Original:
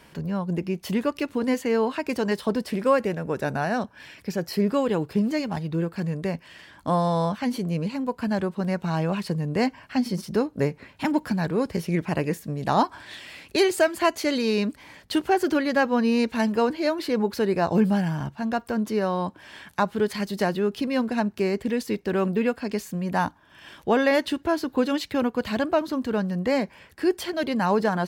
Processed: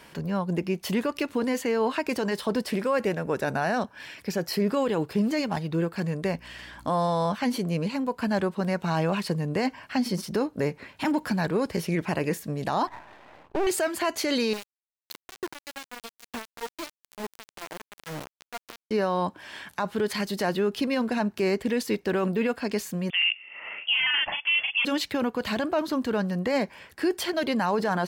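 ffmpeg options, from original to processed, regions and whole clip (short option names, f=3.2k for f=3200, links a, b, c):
-filter_complex "[0:a]asettb=1/sr,asplit=3[a][b][c];[a]atrim=end=6.264[d];[b]atrim=start=6.26:end=6.87,asetpts=PTS-STARTPTS,afade=t=in:d=0.004:c=qsin,afade=t=out:st=0.606:d=0.004:c=qsin,aeval=exprs='val(0)+0.00316*(sin(2*PI*60*n/s)+sin(2*PI*2*60*n/s)/2+sin(2*PI*3*60*n/s)/3+sin(2*PI*4*60*n/s)/4+sin(2*PI*5*60*n/s)/5)':c=same,acompressor=mode=upward:threshold=-39dB:ratio=2.5:attack=3.2:release=140:knee=2.83:detection=peak[e];[c]atrim=start=6.866[f];[d][e]acrossfade=d=0.004:c1=hsin:c2=qsin[g];[g][f]acrossfade=d=0.004:c1=qsin:c2=hsin,asettb=1/sr,asplit=3[h][i][j];[h]atrim=end=12.874[k];[i]atrim=start=12.87:end=13.67,asetpts=PTS-STARTPTS,afade=t=in:d=0.004:c=qsin,afade=t=out:st=0.796:d=0.004:c=qsin,lowpass=f=870:t=q:w=2.5,aeval=exprs='max(val(0),0)':c=same[l];[j]atrim=start=13.666[m];[k][l]acrossfade=d=0.004:c1=hsin:c2=qsin[n];[n][m]acrossfade=d=0.004:c1=qsin:c2=hsin,asettb=1/sr,asplit=3[o][p][q];[o]atrim=end=14.534[r];[p]atrim=start=14.53:end=18.91,asetpts=PTS-STARTPTS,afade=t=in:d=0.004:c=qsin,afade=t=out:st=4.376:d=0.004:c=qsin,acompressor=threshold=-41dB:ratio=3:attack=3.2:release=140:knee=1:detection=peak,aphaser=in_gain=1:out_gain=1:delay=3.3:decay=0.56:speed=1.1:type=triangular,aeval=exprs='val(0)*gte(abs(val(0)),0.0251)':c=same[s];[q]atrim=start=18.906[t];[r][s]acrossfade=d=0.004:c1=hsin:c2=qsin[u];[u][t]acrossfade=d=0.004:c1=qsin:c2=hsin,asettb=1/sr,asplit=3[v][w][x];[v]atrim=end=23.104[y];[w]atrim=start=23.1:end=24.85,asetpts=PTS-STARTPTS,afade=t=in:d=0.004:c=qsin,afade=t=out:st=1.746:d=0.004:c=qsin,highpass=f=950:t=q:w=4.5,asplit=2[z][aa];[aa]adelay=39,volume=-3dB[ab];[z][ab]amix=inputs=2:normalize=0,atrim=end_sample=77175,lowpass=f=3.1k:t=q:w=0.5098,lowpass=f=3.1k:t=q:w=0.6013,lowpass=f=3.1k:t=q:w=0.9,lowpass=f=3.1k:t=q:w=2.563,afreqshift=-3700[ac];[x]atrim=start=24.846[ad];[y][ac]acrossfade=d=0.004:c1=hsin:c2=qsin[ae];[ae][ad]acrossfade=d=0.004:c1=qsin:c2=hsin,lowshelf=f=260:g=-6.5,alimiter=limit=-19.5dB:level=0:latency=1:release=17,volume=3dB"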